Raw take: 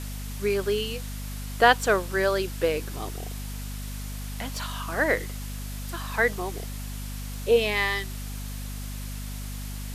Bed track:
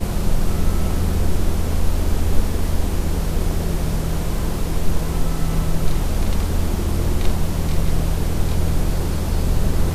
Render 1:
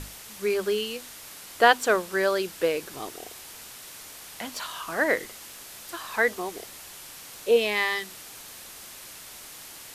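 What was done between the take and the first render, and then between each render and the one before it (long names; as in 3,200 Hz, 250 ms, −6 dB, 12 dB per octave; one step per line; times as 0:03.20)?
mains-hum notches 50/100/150/200/250 Hz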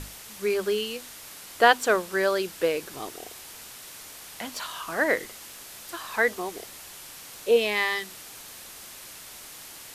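no processing that can be heard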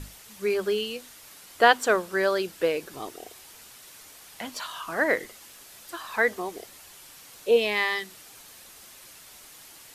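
broadband denoise 6 dB, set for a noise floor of −44 dBFS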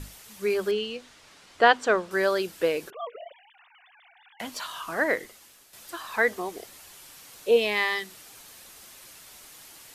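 0:00.71–0:02.11: high-frequency loss of the air 89 metres
0:02.90–0:04.40: three sine waves on the formant tracks
0:04.91–0:05.73: fade out linear, to −9.5 dB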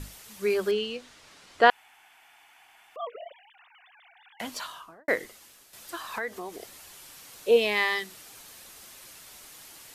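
0:01.70–0:02.96: fill with room tone
0:04.54–0:05.08: fade out and dull
0:06.18–0:06.61: downward compressor 2 to 1, threshold −37 dBFS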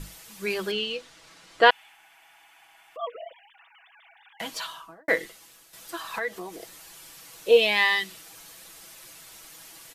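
comb filter 6.1 ms, depth 54%
dynamic equaliser 3,200 Hz, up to +6 dB, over −43 dBFS, Q 1.3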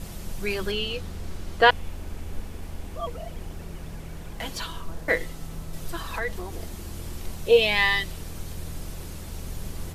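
mix in bed track −16.5 dB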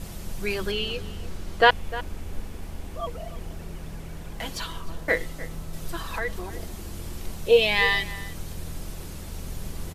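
slap from a distant wall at 52 metres, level −16 dB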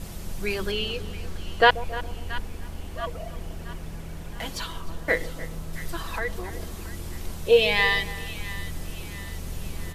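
echo with a time of its own for lows and highs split 880 Hz, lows 137 ms, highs 676 ms, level −15.5 dB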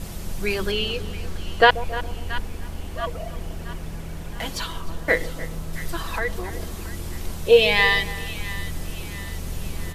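level +3.5 dB
brickwall limiter −1 dBFS, peak gain reduction 2.5 dB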